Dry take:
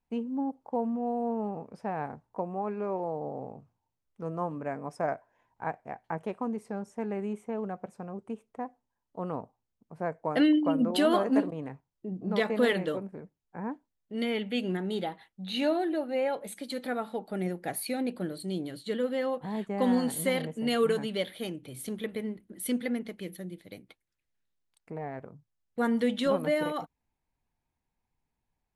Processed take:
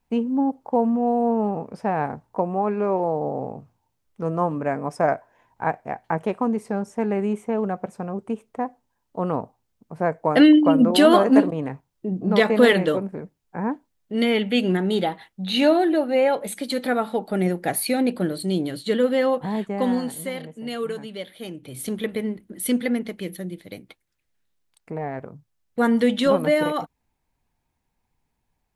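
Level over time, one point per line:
0:19.39 +10 dB
0:20.32 −2.5 dB
0:21.29 −2.5 dB
0:21.83 +8 dB

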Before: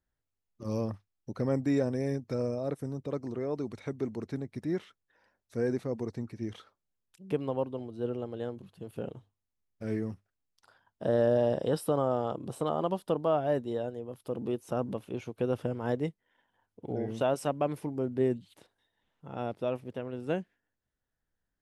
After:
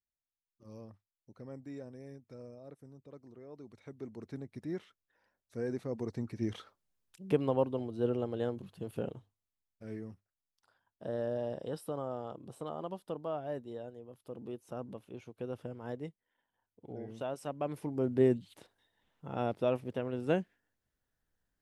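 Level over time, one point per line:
0:03.44 −17.5 dB
0:04.40 −6.5 dB
0:05.66 −6.5 dB
0:06.44 +2 dB
0:08.90 +2 dB
0:09.83 −10 dB
0:17.40 −10 dB
0:18.11 +1.5 dB

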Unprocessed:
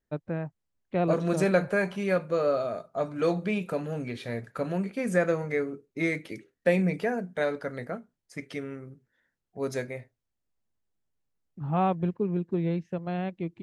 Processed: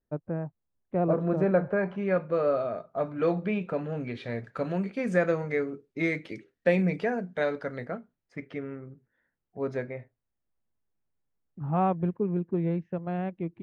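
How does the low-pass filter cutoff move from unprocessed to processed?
0:01.65 1,200 Hz
0:02.39 2,500 Hz
0:03.72 2,500 Hz
0:04.55 4,900 Hz
0:07.67 4,900 Hz
0:08.49 2,000 Hz

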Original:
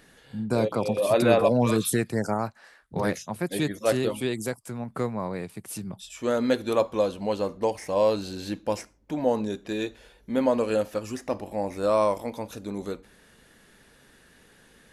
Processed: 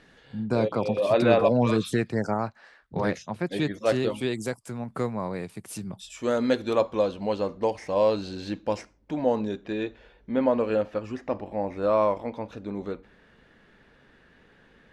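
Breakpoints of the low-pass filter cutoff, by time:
0:03.67 4,700 Hz
0:04.74 9,800 Hz
0:06.05 9,800 Hz
0:06.96 5,000 Hz
0:09.25 5,000 Hz
0:09.84 2,800 Hz

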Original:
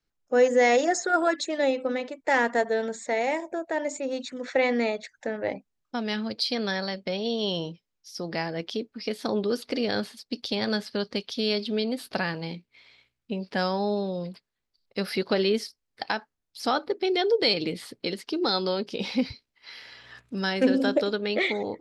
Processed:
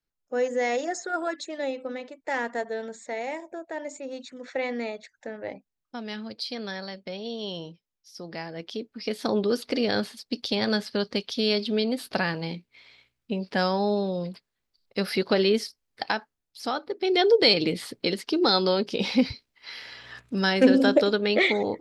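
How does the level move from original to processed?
0:08.48 −6 dB
0:09.22 +2 dB
0:16.06 +2 dB
0:16.86 −5 dB
0:17.20 +4 dB

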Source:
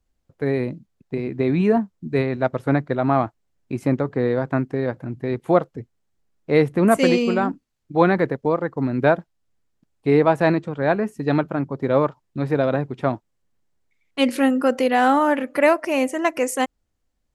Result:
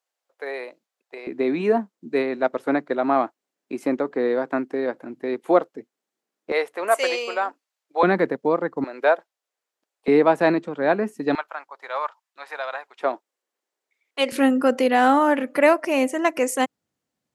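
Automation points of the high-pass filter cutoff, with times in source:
high-pass filter 24 dB per octave
540 Hz
from 0:01.27 260 Hz
from 0:06.52 540 Hz
from 0:08.03 200 Hz
from 0:08.84 460 Hz
from 0:10.08 210 Hz
from 0:11.35 810 Hz
from 0:13.01 370 Hz
from 0:14.32 120 Hz

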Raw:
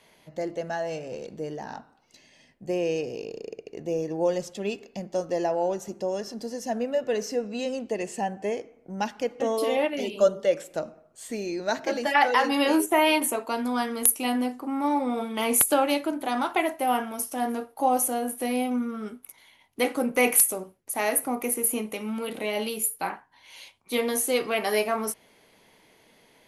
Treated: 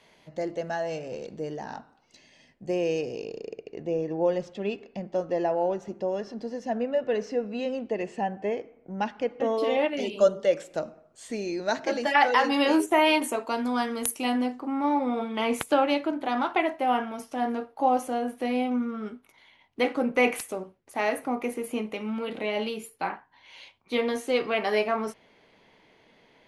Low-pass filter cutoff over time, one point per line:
0:03.20 7,100 Hz
0:04.01 3,100 Hz
0:09.46 3,100 Hz
0:10.04 7,100 Hz
0:14.16 7,100 Hz
0:14.89 3,900 Hz

